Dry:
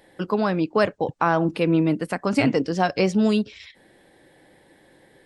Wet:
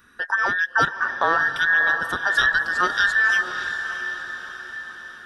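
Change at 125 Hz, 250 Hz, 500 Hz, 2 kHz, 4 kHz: -15.5, -19.0, -10.5, +14.5, +5.5 dB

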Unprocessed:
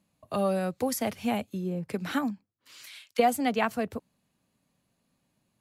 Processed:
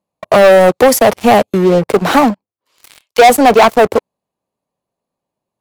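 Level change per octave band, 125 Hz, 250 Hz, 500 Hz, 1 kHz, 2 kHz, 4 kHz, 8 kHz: +15.5, +15.5, +22.0, +20.5, +20.0, +19.5, +18.0 dB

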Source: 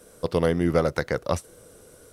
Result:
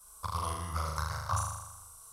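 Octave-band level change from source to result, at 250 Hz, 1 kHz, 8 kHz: -22.5, -1.0, +3.0 dB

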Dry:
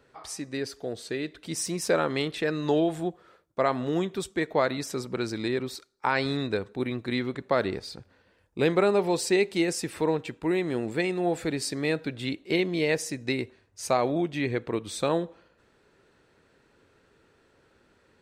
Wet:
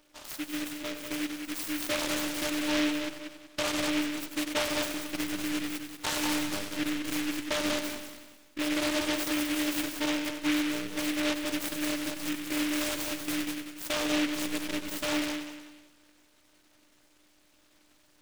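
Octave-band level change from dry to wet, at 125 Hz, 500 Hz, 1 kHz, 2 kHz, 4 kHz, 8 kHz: -13.5, -10.0, -6.0, -0.5, +3.5, +2.0 dB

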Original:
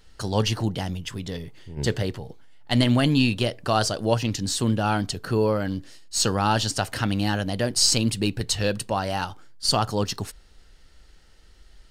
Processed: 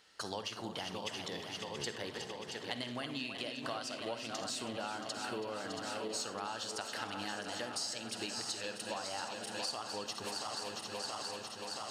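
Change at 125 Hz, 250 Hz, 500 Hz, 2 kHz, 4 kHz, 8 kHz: -27.0, -19.5, -14.5, -11.0, -12.0, -14.0 dB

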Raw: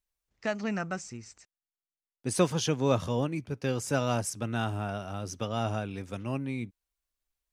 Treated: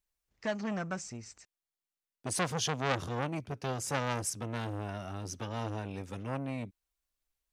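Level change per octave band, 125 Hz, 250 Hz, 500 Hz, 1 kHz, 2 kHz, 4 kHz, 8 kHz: -5.0, -6.0, -6.5, -2.0, -1.5, -1.5, -0.5 dB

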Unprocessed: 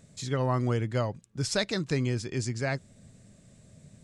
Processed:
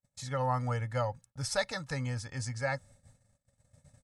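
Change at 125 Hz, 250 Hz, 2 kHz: -5.0, -10.0, -1.5 dB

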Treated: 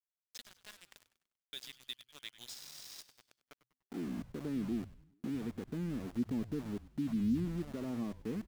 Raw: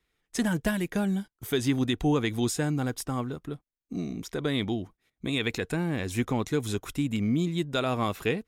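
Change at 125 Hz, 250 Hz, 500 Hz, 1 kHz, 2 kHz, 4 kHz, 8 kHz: -13.5, -9.0, -16.5, -20.5, -20.5, -13.0, -15.5 dB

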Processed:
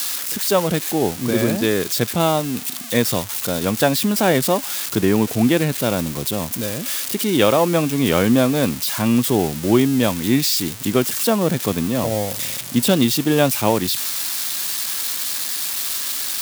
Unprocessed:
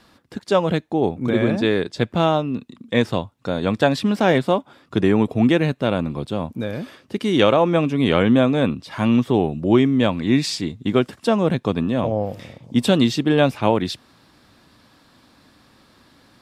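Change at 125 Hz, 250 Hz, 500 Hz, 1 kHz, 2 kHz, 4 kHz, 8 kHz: 0.0, 0.0, 0.0, 0.0, +1.5, +5.0, +18.0 dB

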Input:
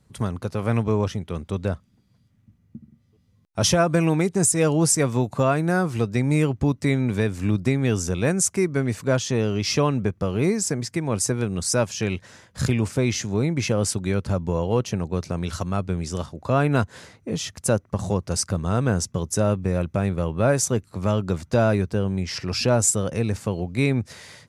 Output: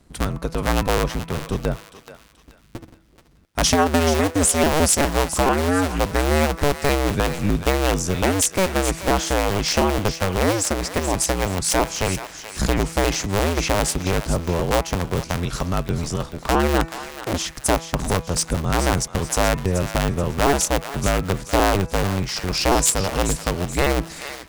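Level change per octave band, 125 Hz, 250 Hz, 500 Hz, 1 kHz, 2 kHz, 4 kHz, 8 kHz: -1.5, 0.0, +2.0, +7.5, +5.5, +6.0, +3.0 dB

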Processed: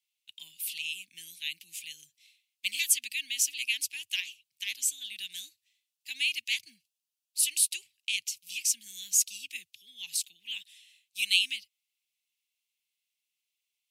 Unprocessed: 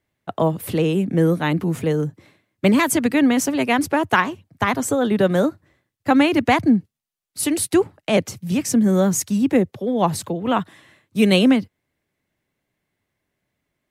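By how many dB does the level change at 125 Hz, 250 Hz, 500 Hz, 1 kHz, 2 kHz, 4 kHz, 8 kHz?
under -40 dB, under -40 dB, under -40 dB, under -40 dB, -9.0 dB, -0.5 dB, 0.0 dB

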